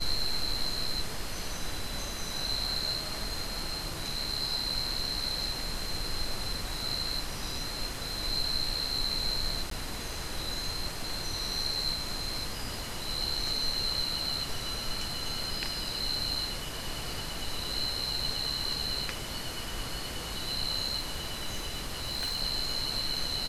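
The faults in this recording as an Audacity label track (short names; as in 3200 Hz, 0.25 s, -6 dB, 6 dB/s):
9.700000	9.710000	gap 13 ms
20.990000	22.420000	clipped -28 dBFS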